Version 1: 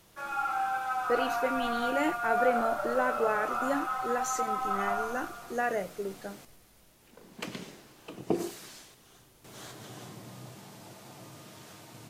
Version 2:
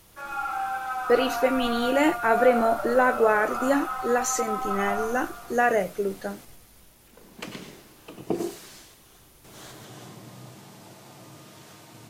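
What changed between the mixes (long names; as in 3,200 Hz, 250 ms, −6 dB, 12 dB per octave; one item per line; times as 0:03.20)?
speech +8.5 dB
background: send +7.0 dB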